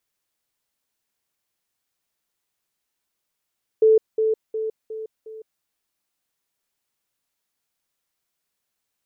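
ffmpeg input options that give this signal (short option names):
-f lavfi -i "aevalsrc='pow(10,(-11-6*floor(t/0.36))/20)*sin(2*PI*439*t)*clip(min(mod(t,0.36),0.16-mod(t,0.36))/0.005,0,1)':d=1.8:s=44100"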